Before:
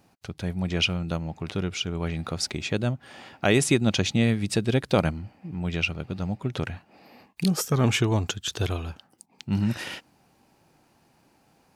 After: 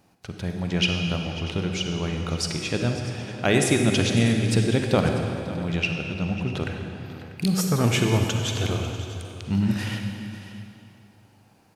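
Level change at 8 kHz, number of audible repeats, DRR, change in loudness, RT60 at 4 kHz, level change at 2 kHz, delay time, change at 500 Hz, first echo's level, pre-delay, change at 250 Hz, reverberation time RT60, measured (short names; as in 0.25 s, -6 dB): +1.5 dB, 2, 2.5 dB, +2.0 dB, 2.2 s, +2.0 dB, 0.546 s, +2.0 dB, -16.5 dB, 37 ms, +2.5 dB, 2.6 s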